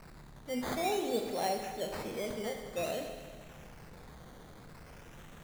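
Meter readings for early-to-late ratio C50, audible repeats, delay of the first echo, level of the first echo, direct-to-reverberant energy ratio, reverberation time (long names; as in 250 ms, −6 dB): 5.0 dB, no echo audible, no echo audible, no echo audible, 3.5 dB, 1.7 s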